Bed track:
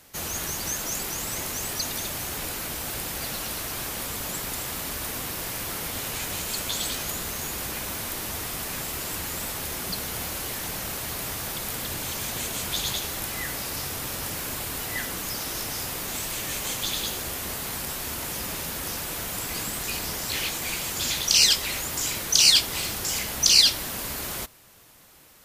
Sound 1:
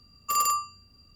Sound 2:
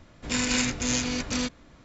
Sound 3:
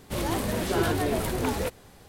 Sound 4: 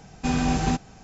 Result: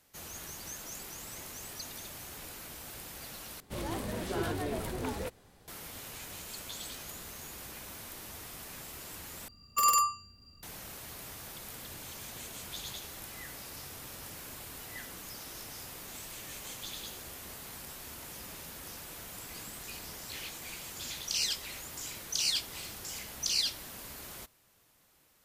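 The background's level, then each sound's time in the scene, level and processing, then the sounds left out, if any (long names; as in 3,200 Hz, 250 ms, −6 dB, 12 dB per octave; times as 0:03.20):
bed track −13.5 dB
0:03.60: overwrite with 3 −8.5 dB
0:09.48: overwrite with 1 −0.5 dB
not used: 2, 4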